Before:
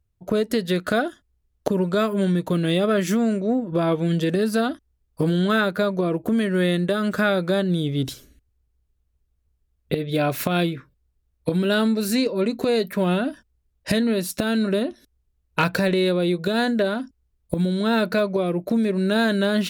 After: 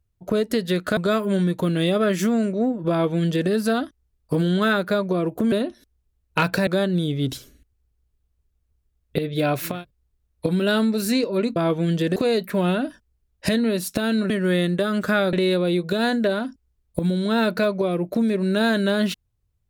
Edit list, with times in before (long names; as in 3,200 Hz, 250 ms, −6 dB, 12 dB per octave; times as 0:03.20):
0:00.97–0:01.85: remove
0:03.78–0:04.38: duplicate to 0:12.59
0:06.40–0:07.43: swap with 0:14.73–0:15.88
0:10.49–0:10.76: remove, crossfade 0.24 s